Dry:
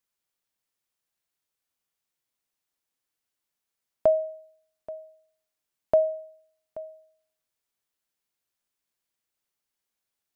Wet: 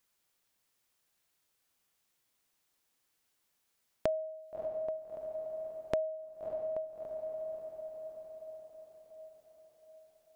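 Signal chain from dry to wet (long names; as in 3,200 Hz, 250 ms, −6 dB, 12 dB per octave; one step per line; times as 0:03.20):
feedback delay with all-pass diffusion 642 ms, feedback 51%, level −14.5 dB
downward compressor 3 to 1, threshold −44 dBFS, peak gain reduction 20 dB
level +7 dB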